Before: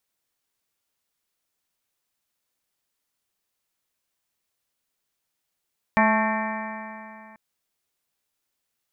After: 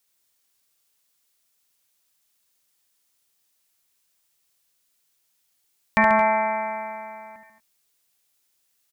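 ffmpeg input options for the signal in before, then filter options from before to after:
-f lavfi -i "aevalsrc='0.1*pow(10,-3*t/2.7)*sin(2*PI*216.17*t)+0.01*pow(10,-3*t/2.7)*sin(2*PI*433.38*t)+0.0708*pow(10,-3*t/2.7)*sin(2*PI*652.65*t)+0.1*pow(10,-3*t/2.7)*sin(2*PI*874.99*t)+0.0668*pow(10,-3*t/2.7)*sin(2*PI*1101.39*t)+0.0188*pow(10,-3*t/2.7)*sin(2*PI*1332.8*t)+0.0266*pow(10,-3*t/2.7)*sin(2*PI*1570.15*t)+0.0794*pow(10,-3*t/2.7)*sin(2*PI*1814.32*t)+0.0266*pow(10,-3*t/2.7)*sin(2*PI*2066.13*t)+0.0422*pow(10,-3*t/2.7)*sin(2*PI*2326.39*t)':duration=1.39:sample_rate=44100"
-af "highshelf=frequency=2700:gain=9.5,aecho=1:1:54|72|138|224|241:0.112|0.501|0.299|0.224|0.112"

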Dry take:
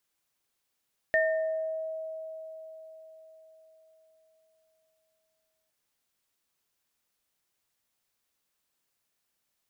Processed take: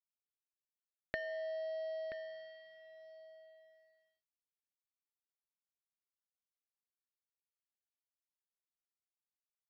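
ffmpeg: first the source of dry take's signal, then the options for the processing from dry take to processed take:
-f lavfi -i "aevalsrc='0.0708*pow(10,-3*t/4.7)*sin(2*PI*639*t)+0.0841*pow(10,-3*t/0.74)*sin(2*PI*1820*t)':duration=4.56:sample_rate=44100"
-af "acompressor=threshold=-36dB:ratio=12,aresample=11025,aeval=exprs='sgn(val(0))*max(abs(val(0))-0.00316,0)':channel_layout=same,aresample=44100,aecho=1:1:979:0.251"

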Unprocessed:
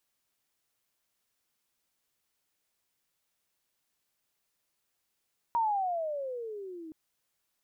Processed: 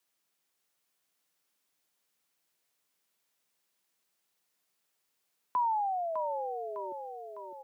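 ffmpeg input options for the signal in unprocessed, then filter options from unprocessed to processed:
-f lavfi -i "aevalsrc='pow(10,(-24-17.5*t/1.37)/20)*sin(2*PI*952*1.37/(-19.5*log(2)/12)*(exp(-19.5*log(2)/12*t/1.37)-1))':duration=1.37:sample_rate=44100"
-af "highpass=frequency=98:poles=1,afreqshift=56,aecho=1:1:605|1210|1815|2420|3025|3630:0.447|0.228|0.116|0.0593|0.0302|0.0154"

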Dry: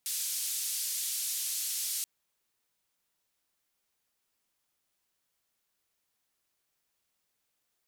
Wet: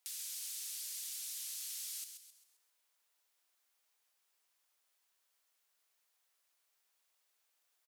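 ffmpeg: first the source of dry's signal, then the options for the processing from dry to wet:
-f lavfi -i "anoisesrc=color=white:duration=1.98:sample_rate=44100:seed=1,highpass=frequency=4400,lowpass=frequency=13000,volume=-24.9dB"
-filter_complex "[0:a]highpass=530,acompressor=threshold=-51dB:ratio=2,asplit=6[link_01][link_02][link_03][link_04][link_05][link_06];[link_02]adelay=132,afreqshift=58,volume=-8dB[link_07];[link_03]adelay=264,afreqshift=116,volume=-15.5dB[link_08];[link_04]adelay=396,afreqshift=174,volume=-23.1dB[link_09];[link_05]adelay=528,afreqshift=232,volume=-30.6dB[link_10];[link_06]adelay=660,afreqshift=290,volume=-38.1dB[link_11];[link_01][link_07][link_08][link_09][link_10][link_11]amix=inputs=6:normalize=0"

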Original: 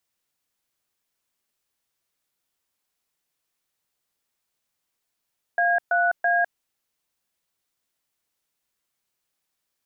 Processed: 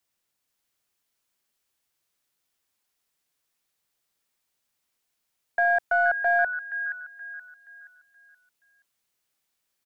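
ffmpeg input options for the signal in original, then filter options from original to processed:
-f lavfi -i "aevalsrc='0.0944*clip(min(mod(t,0.331),0.204-mod(t,0.331))/0.002,0,1)*(eq(floor(t/0.331),0)*(sin(2*PI*697*mod(t,0.331))+sin(2*PI*1633*mod(t,0.331)))+eq(floor(t/0.331),1)*(sin(2*PI*697*mod(t,0.331))+sin(2*PI*1477*mod(t,0.331)))+eq(floor(t/0.331),2)*(sin(2*PI*697*mod(t,0.331))+sin(2*PI*1633*mod(t,0.331))))':duration=0.993:sample_rate=44100"
-filter_complex "[0:a]acrossover=split=710|800|950[link_01][link_02][link_03][link_04];[link_03]aeval=exprs='clip(val(0),-1,0.00211)':channel_layout=same[link_05];[link_04]aecho=1:1:475|950|1425|1900|2375:0.596|0.214|0.0772|0.0278|0.01[link_06];[link_01][link_02][link_05][link_06]amix=inputs=4:normalize=0"

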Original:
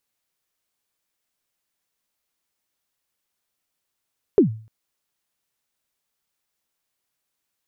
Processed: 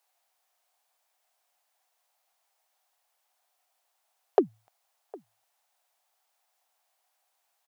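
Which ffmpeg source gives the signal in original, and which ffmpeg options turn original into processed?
-f lavfi -i "aevalsrc='0.447*pow(10,-3*t/0.42)*sin(2*PI*(450*0.113/log(110/450)*(exp(log(110/450)*min(t,0.113)/0.113)-1)+110*max(t-0.113,0)))':duration=0.3:sample_rate=44100"
-filter_complex "[0:a]highpass=frequency=730:width_type=q:width=4.9,asplit=2[link_01][link_02];[link_02]asoftclip=type=hard:threshold=-19.5dB,volume=-9.5dB[link_03];[link_01][link_03]amix=inputs=2:normalize=0,asplit=2[link_04][link_05];[link_05]adelay=758,volume=-22dB,highshelf=frequency=4000:gain=-17.1[link_06];[link_04][link_06]amix=inputs=2:normalize=0"

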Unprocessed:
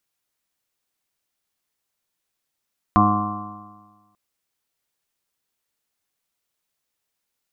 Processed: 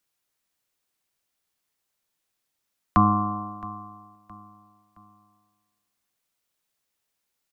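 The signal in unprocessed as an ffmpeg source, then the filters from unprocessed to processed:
-f lavfi -i "aevalsrc='0.1*pow(10,-3*t/1.38)*sin(2*PI*103.02*t)+0.15*pow(10,-3*t/1.38)*sin(2*PI*206.16*t)+0.1*pow(10,-3*t/1.38)*sin(2*PI*309.53*t)+0.0112*pow(10,-3*t/1.38)*sin(2*PI*413.25*t)+0.0126*pow(10,-3*t/1.38)*sin(2*PI*517.44*t)+0.015*pow(10,-3*t/1.38)*sin(2*PI*622.21*t)+0.112*pow(10,-3*t/1.38)*sin(2*PI*727.68*t)+0.0178*pow(10,-3*t/1.38)*sin(2*PI*833.96*t)+0.0188*pow(10,-3*t/1.38)*sin(2*PI*941.16*t)+0.178*pow(10,-3*t/1.38)*sin(2*PI*1049.39*t)+0.133*pow(10,-3*t/1.38)*sin(2*PI*1158.75*t)+0.0141*pow(10,-3*t/1.38)*sin(2*PI*1269.37*t)+0.0119*pow(10,-3*t/1.38)*sin(2*PI*1381.33*t)':duration=1.19:sample_rate=44100"
-filter_complex "[0:a]acrossover=split=140|330|810[link_01][link_02][link_03][link_04];[link_03]acompressor=threshold=-36dB:ratio=6[link_05];[link_01][link_02][link_05][link_04]amix=inputs=4:normalize=0,aecho=1:1:668|1336|2004:0.1|0.04|0.016"

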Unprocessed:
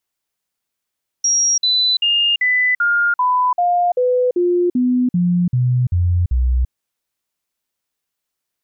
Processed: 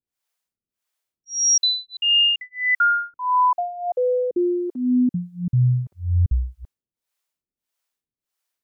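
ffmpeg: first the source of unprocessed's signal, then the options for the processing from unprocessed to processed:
-f lavfi -i "aevalsrc='0.237*clip(min(mod(t,0.39),0.34-mod(t,0.39))/0.005,0,1)*sin(2*PI*5650*pow(2,-floor(t/0.39)/2)*mod(t,0.39))':duration=5.46:sample_rate=44100"
-filter_complex "[0:a]acrossover=split=430[link_01][link_02];[link_01]aeval=exprs='val(0)*(1-1/2+1/2*cos(2*PI*1.6*n/s))':channel_layout=same[link_03];[link_02]aeval=exprs='val(0)*(1-1/2-1/2*cos(2*PI*1.6*n/s))':channel_layout=same[link_04];[link_03][link_04]amix=inputs=2:normalize=0"

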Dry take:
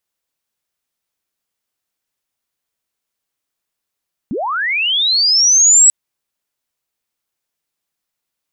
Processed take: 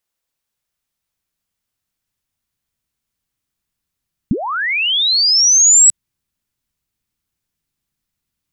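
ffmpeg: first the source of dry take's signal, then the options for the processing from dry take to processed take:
-f lavfi -i "aevalsrc='pow(10,(-18+13.5*t/1.59)/20)*sin(2*PI*(180*t+7720*t*t/(2*1.59)))':duration=1.59:sample_rate=44100"
-af "asubboost=boost=6.5:cutoff=210"

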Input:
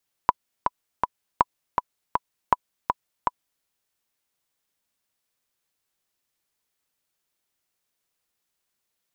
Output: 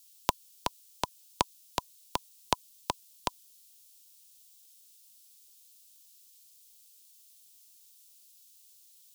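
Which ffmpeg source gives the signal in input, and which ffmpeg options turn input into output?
-f lavfi -i "aevalsrc='pow(10,(-3-4.5*gte(mod(t,3*60/161),60/161))/20)*sin(2*PI*990*mod(t,60/161))*exp(-6.91*mod(t,60/161)/0.03)':duration=3.35:sample_rate=44100"
-filter_complex "[0:a]equalizer=frequency=1100:width=1.8:gain=-10.5,acrossover=split=120|800[link_01][link_02][link_03];[link_03]aexciter=amount=7.3:drive=5.9:freq=2800[link_04];[link_01][link_02][link_04]amix=inputs=3:normalize=0"

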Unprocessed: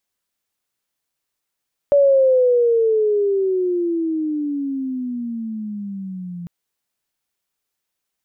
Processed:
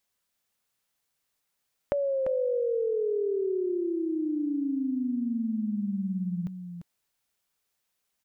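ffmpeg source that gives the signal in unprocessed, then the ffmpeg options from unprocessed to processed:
-f lavfi -i "aevalsrc='pow(10,(-9.5-18.5*t/4.55)/20)*sin(2*PI*575*4.55/(-21*log(2)/12)*(exp(-21*log(2)/12*t/4.55)-1))':duration=4.55:sample_rate=44100"
-filter_complex "[0:a]equalizer=frequency=330:width=6.1:gain=-6.5,acompressor=threshold=-28dB:ratio=6,asplit=2[link_01][link_02];[link_02]aecho=0:1:345:0.398[link_03];[link_01][link_03]amix=inputs=2:normalize=0"

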